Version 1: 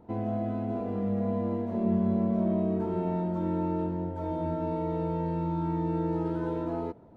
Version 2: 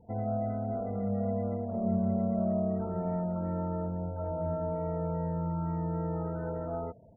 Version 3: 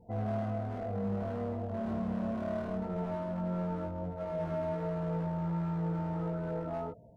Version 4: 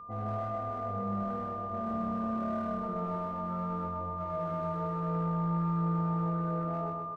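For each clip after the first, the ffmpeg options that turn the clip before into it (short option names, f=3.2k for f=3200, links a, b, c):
-af "equalizer=f=2.7k:t=o:w=0.5:g=-7,afftfilt=real='re*gte(hypot(re,im),0.00398)':imag='im*gte(hypot(re,im),0.00398)':win_size=1024:overlap=0.75,aecho=1:1:1.5:0.71,volume=-3dB"
-filter_complex "[0:a]asplit=2[a][b];[b]alimiter=level_in=6.5dB:limit=-24dB:level=0:latency=1:release=11,volume=-6.5dB,volume=-3dB[c];[a][c]amix=inputs=2:normalize=0,volume=26.5dB,asoftclip=hard,volume=-26.5dB,flanger=delay=17:depth=2.1:speed=1.4,volume=-1.5dB"
-af "aeval=exprs='val(0)+0.01*sin(2*PI*1200*n/s)':c=same,aecho=1:1:125|250|375|500|625|750|875:0.631|0.328|0.171|0.0887|0.0461|0.024|0.0125,volume=-3.5dB"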